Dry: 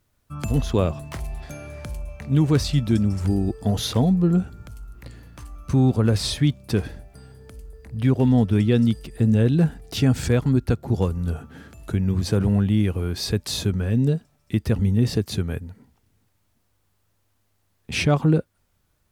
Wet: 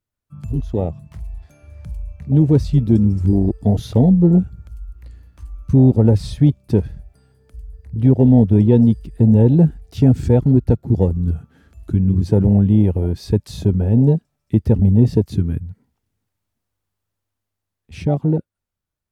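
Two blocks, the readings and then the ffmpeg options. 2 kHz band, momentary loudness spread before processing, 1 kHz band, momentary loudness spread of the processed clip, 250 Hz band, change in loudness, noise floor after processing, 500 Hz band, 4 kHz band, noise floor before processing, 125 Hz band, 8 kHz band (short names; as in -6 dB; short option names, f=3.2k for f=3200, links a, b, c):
under -10 dB, 16 LU, -0.5 dB, 15 LU, +6.0 dB, +6.0 dB, -82 dBFS, +5.5 dB, under -10 dB, -68 dBFS, +6.0 dB, under -10 dB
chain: -af "dynaudnorm=f=120:g=31:m=11.5dB,afwtdn=0.158"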